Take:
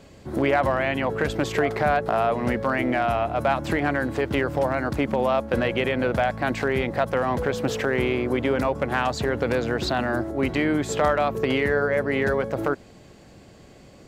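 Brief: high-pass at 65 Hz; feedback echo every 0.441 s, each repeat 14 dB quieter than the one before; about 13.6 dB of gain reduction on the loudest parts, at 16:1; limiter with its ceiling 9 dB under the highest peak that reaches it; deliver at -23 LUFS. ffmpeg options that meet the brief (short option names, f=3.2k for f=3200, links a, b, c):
-af "highpass=65,acompressor=threshold=-31dB:ratio=16,alimiter=level_in=2dB:limit=-24dB:level=0:latency=1,volume=-2dB,aecho=1:1:441|882:0.2|0.0399,volume=14dB"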